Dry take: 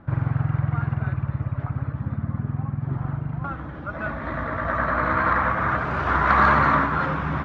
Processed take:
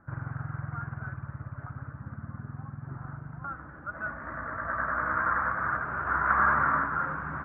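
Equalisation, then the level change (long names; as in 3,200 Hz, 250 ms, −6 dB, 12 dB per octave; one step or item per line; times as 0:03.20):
transistor ladder low-pass 1,700 Hz, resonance 60%
−2.5 dB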